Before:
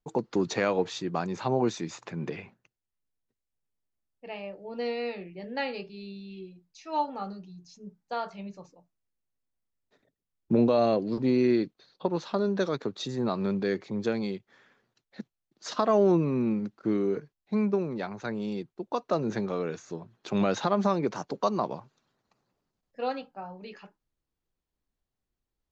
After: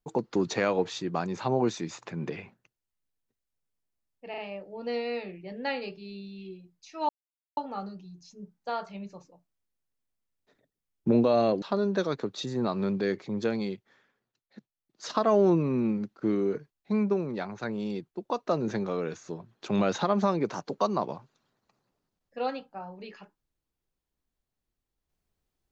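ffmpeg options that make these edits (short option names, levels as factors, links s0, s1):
-filter_complex "[0:a]asplit=7[s0][s1][s2][s3][s4][s5][s6];[s0]atrim=end=4.342[s7];[s1]atrim=start=4.298:end=4.342[s8];[s2]atrim=start=4.298:end=7.01,asetpts=PTS-STARTPTS,afade=t=out:st=2.708:d=0.004:c=hsin,apad=pad_dur=0.48[s9];[s3]atrim=start=7.01:end=11.062,asetpts=PTS-STARTPTS,afade=t=in:d=0.004:c=hsin[s10];[s4]atrim=start=12.238:end=14.74,asetpts=PTS-STARTPTS,afade=t=out:st=2.122:d=0.38:silence=0.334965[s11];[s5]atrim=start=14.74:end=15.36,asetpts=PTS-STARTPTS,volume=0.335[s12];[s6]atrim=start=15.36,asetpts=PTS-STARTPTS,afade=t=in:d=0.38:silence=0.334965[s13];[s7][s8]acrossfade=d=0.004:c1=hsin:c2=hsin[s14];[s9][s10]concat=n=2:v=0:a=1[s15];[s14][s15]acrossfade=d=0.004:c1=hsin:c2=hsin[s16];[s11][s12][s13]concat=n=3:v=0:a=1[s17];[s16][s17]acrossfade=d=0.004:c1=hsin:c2=hsin"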